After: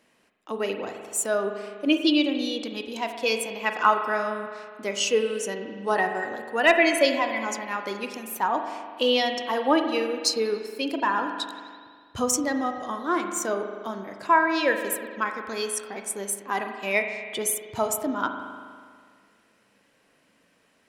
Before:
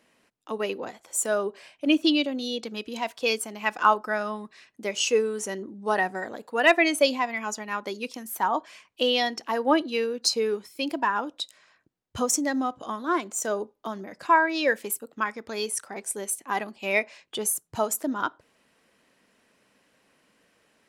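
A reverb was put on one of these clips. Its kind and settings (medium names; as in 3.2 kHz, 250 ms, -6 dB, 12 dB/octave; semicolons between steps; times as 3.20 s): spring tank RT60 1.9 s, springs 40 ms, chirp 55 ms, DRR 5.5 dB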